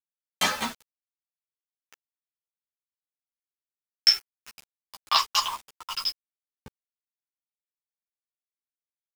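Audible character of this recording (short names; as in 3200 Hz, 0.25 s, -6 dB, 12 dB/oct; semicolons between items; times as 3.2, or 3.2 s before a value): a quantiser's noise floor 6-bit, dither none; a shimmering, thickened sound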